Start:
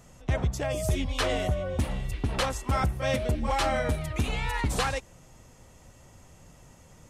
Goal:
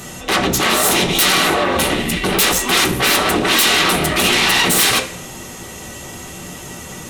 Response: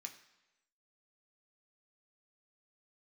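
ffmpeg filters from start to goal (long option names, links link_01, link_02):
-filter_complex "[0:a]acontrast=66,aeval=exprs='0.376*sin(PI/2*7.08*val(0)/0.376)':channel_layout=same[link_01];[1:a]atrim=start_sample=2205,asetrate=70560,aresample=44100[link_02];[link_01][link_02]afir=irnorm=-1:irlink=0,volume=8dB"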